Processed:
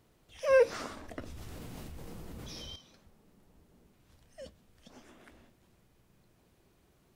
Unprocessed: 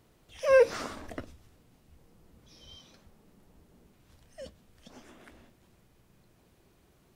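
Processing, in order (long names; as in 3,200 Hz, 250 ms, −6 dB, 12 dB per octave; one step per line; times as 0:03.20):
0:01.20–0:02.76: envelope flattener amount 100%
level −3 dB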